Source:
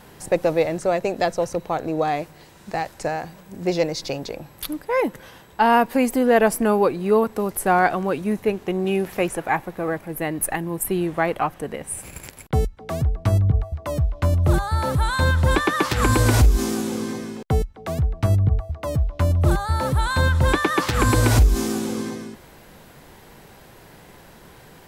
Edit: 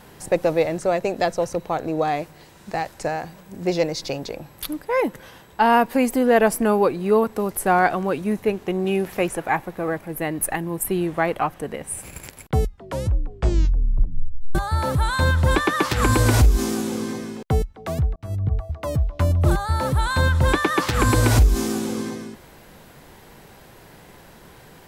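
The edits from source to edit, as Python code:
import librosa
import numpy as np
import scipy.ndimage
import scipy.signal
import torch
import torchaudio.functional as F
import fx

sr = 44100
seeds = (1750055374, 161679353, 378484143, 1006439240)

y = fx.edit(x, sr, fx.tape_stop(start_s=12.61, length_s=1.94),
    fx.fade_in_span(start_s=18.16, length_s=0.49), tone=tone)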